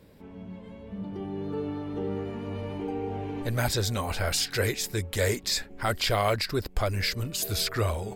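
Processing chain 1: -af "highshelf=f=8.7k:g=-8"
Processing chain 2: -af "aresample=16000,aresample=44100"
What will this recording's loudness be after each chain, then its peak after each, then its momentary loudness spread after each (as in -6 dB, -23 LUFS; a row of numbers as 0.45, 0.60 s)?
-30.0, -29.5 LUFS; -13.5, -13.0 dBFS; 12, 12 LU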